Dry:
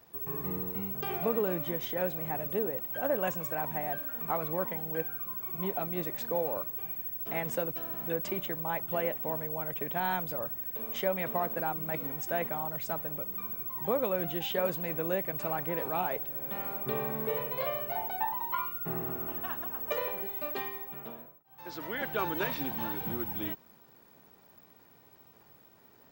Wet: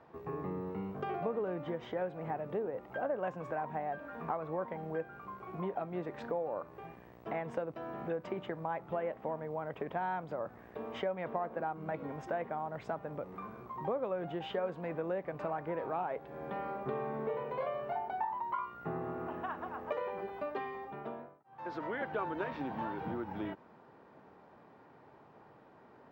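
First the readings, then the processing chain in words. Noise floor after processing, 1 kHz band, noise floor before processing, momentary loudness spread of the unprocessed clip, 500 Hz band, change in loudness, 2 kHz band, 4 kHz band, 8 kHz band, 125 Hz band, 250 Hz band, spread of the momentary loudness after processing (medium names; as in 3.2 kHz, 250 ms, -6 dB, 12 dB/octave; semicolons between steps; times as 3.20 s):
-59 dBFS, -1.5 dB, -59 dBFS, 4 LU, -2.5 dB, -6.5 dB, -5.5 dB, -10.5 dB, under -20 dB, -4.0 dB, -3.0 dB, 7 LU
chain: low-pass 1.1 kHz 12 dB/octave; tilt EQ +2.5 dB/octave; compression 2.5:1, threshold -44 dBFS, peak gain reduction 11 dB; trim +7.5 dB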